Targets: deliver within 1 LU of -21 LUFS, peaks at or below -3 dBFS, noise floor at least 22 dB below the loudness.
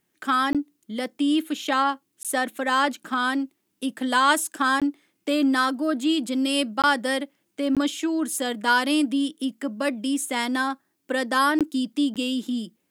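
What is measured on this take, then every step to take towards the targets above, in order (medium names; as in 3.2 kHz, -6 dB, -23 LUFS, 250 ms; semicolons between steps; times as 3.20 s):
dropouts 7; longest dropout 17 ms; loudness -24.0 LUFS; peak level -7.5 dBFS; loudness target -21.0 LUFS
-> interpolate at 0.53/2.23/4.80/6.82/7.75/11.59/12.14 s, 17 ms; trim +3 dB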